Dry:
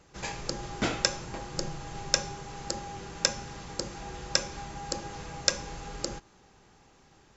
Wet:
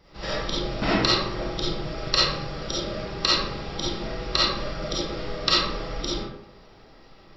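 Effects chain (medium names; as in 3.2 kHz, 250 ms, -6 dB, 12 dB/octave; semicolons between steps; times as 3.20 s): formant shift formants -5 st; algorithmic reverb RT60 0.78 s, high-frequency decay 0.55×, pre-delay 10 ms, DRR -8 dB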